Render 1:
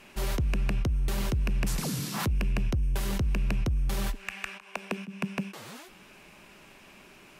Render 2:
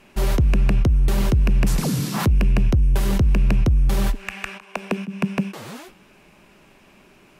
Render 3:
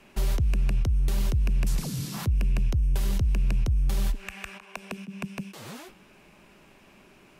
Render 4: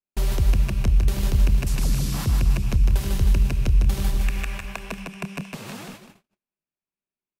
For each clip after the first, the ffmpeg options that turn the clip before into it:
ffmpeg -i in.wav -af "agate=range=-7dB:threshold=-50dB:ratio=16:detection=peak,tiltshelf=frequency=970:gain=3,volume=7.5dB" out.wav
ffmpeg -i in.wav -filter_complex "[0:a]acrossover=split=120|2700|6000[link_01][link_02][link_03][link_04];[link_01]acompressor=threshold=-18dB:ratio=4[link_05];[link_02]acompressor=threshold=-35dB:ratio=4[link_06];[link_03]acompressor=threshold=-41dB:ratio=4[link_07];[link_04]acompressor=threshold=-39dB:ratio=4[link_08];[link_05][link_06][link_07][link_08]amix=inputs=4:normalize=0,volume=-3dB" out.wav
ffmpeg -i in.wav -af "aecho=1:1:150|315|496.5|696.2|915.8:0.631|0.398|0.251|0.158|0.1,agate=range=-49dB:threshold=-43dB:ratio=16:detection=peak,volume=3dB" out.wav

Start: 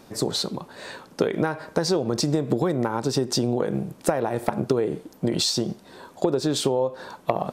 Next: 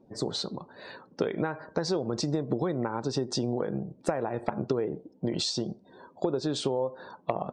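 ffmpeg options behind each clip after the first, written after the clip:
ffmpeg -i in.wav -af "lowpass=6900,afftdn=noise_reduction=25:noise_floor=-46,volume=-6dB" out.wav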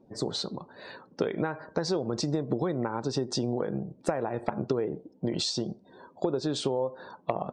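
ffmpeg -i in.wav -af anull out.wav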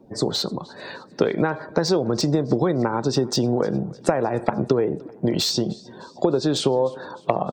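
ffmpeg -i in.wav -filter_complex "[0:a]aecho=1:1:304|608|912|1216:0.0631|0.0347|0.0191|0.0105,acrossover=split=220|1700[link_01][link_02][link_03];[link_03]asoftclip=type=hard:threshold=-26.5dB[link_04];[link_01][link_02][link_04]amix=inputs=3:normalize=0,volume=8.5dB" out.wav

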